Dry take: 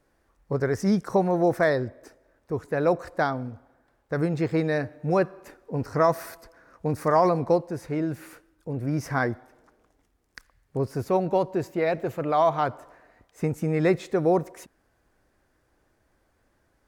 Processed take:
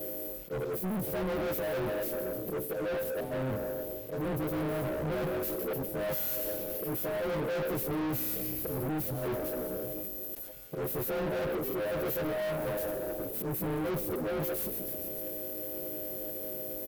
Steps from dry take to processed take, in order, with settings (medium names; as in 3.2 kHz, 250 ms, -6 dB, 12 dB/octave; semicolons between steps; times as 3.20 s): partials quantised in pitch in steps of 3 st; reverse; compression 12:1, threshold -34 dBFS, peak gain reduction 20 dB; reverse; slow attack 515 ms; comb 6.1 ms, depth 62%; on a send: frequency-shifting echo 144 ms, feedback 63%, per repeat -61 Hz, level -21 dB; on the sum: overdrive pedal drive 30 dB, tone 2.4 kHz, clips at -30 dBFS; inverse Chebyshev band-stop 1.1–7.1 kHz, stop band 40 dB; treble shelf 8.9 kHz +10.5 dB; waveshaping leveller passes 5; decay stretcher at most 76 dB/s; trim -3.5 dB